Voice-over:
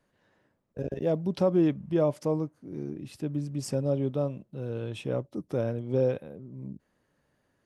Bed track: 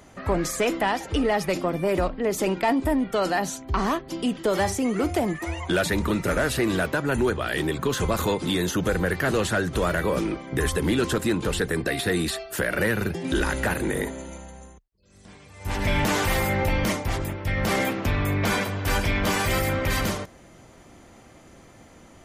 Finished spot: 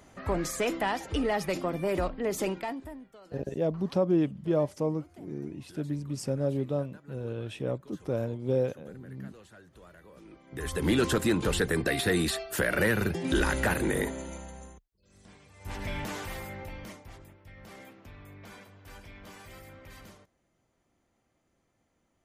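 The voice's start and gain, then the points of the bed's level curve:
2.55 s, -1.5 dB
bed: 2.45 s -5.5 dB
3.2 s -29.5 dB
10.13 s -29.5 dB
10.9 s -2 dB
14.72 s -2 dB
17.52 s -25 dB

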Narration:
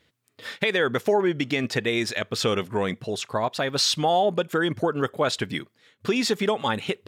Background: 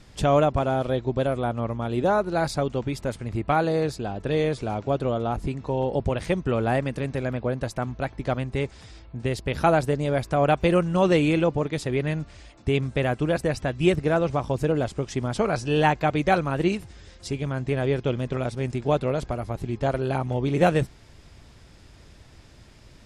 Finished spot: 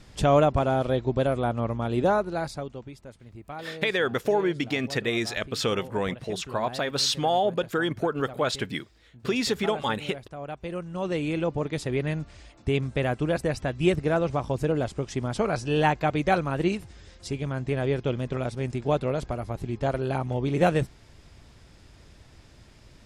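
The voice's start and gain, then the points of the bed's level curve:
3.20 s, -2.5 dB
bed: 2.06 s 0 dB
3.05 s -16.5 dB
10.47 s -16.5 dB
11.71 s -2 dB

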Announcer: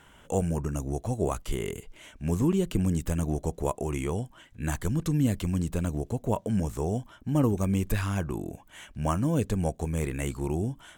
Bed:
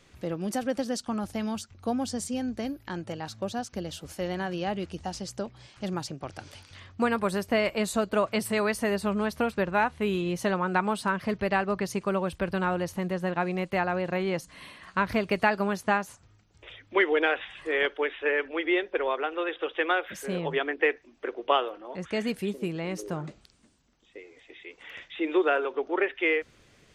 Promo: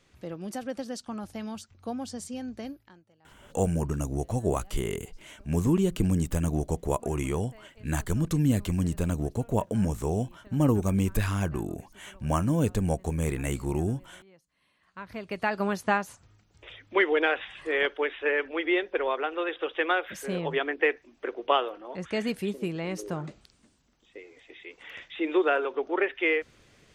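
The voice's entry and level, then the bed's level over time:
3.25 s, +1.0 dB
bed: 2.71 s -5.5 dB
3.08 s -28.5 dB
14.48 s -28.5 dB
15.65 s 0 dB

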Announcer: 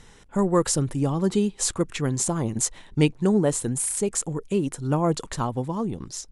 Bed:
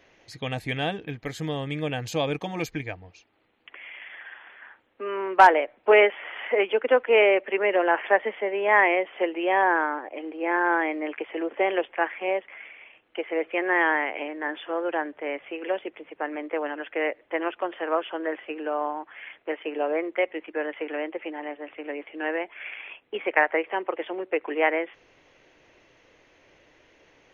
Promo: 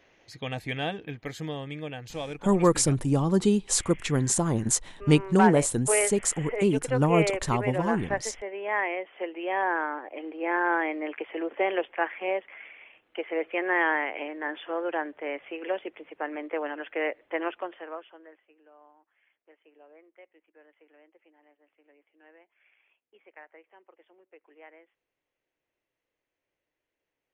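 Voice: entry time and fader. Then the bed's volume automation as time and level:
2.10 s, 0.0 dB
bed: 1.34 s -3 dB
2.02 s -9 dB
9.08 s -9 dB
10.2 s -2.5 dB
17.51 s -2.5 dB
18.52 s -28.5 dB

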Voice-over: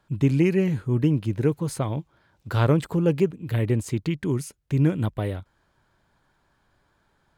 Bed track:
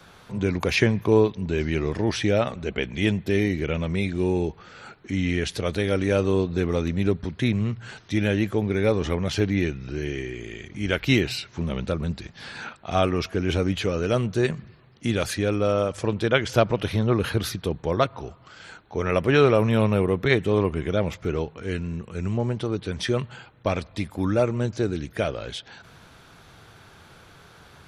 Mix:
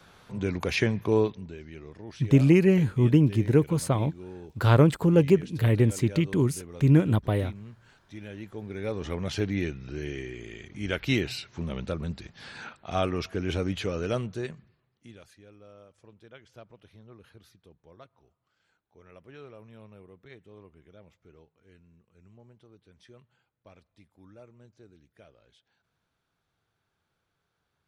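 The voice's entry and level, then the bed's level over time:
2.10 s, +1.5 dB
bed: 1.3 s -5 dB
1.59 s -19 dB
8.3 s -19 dB
9.25 s -5.5 dB
14.11 s -5.5 dB
15.37 s -29.5 dB

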